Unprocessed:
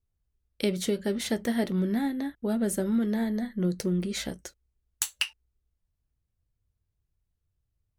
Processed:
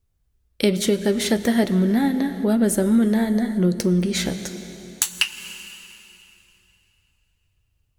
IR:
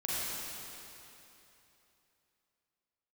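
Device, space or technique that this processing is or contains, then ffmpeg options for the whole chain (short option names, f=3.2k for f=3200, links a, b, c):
ducked reverb: -filter_complex "[0:a]asplit=3[a][b][c];[1:a]atrim=start_sample=2205[d];[b][d]afir=irnorm=-1:irlink=0[e];[c]apad=whole_len=352133[f];[e][f]sidechaincompress=threshold=-29dB:ratio=8:attack=7.5:release=307,volume=-13dB[g];[a][g]amix=inputs=2:normalize=0,volume=7.5dB"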